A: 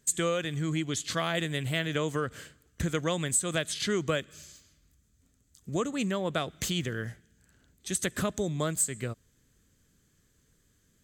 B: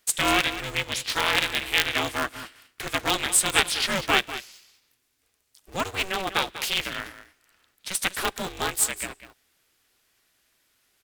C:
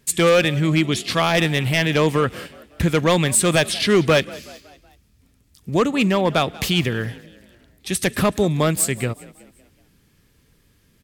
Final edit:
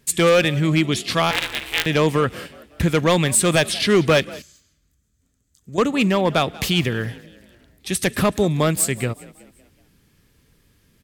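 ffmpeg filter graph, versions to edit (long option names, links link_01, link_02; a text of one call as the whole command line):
ffmpeg -i take0.wav -i take1.wav -i take2.wav -filter_complex "[2:a]asplit=3[link_01][link_02][link_03];[link_01]atrim=end=1.312[link_04];[1:a]atrim=start=1.308:end=1.862[link_05];[link_02]atrim=start=1.858:end=4.422[link_06];[0:a]atrim=start=4.418:end=5.782[link_07];[link_03]atrim=start=5.778[link_08];[link_04][link_05]acrossfade=duration=0.004:curve1=hsin:curve2=hsin[link_09];[link_09][link_06]acrossfade=duration=0.004:curve1=hsin:curve2=hsin[link_10];[link_10][link_07]acrossfade=duration=0.004:curve1=hsin:curve2=hsin[link_11];[link_11][link_08]acrossfade=duration=0.004:curve1=hsin:curve2=hsin" out.wav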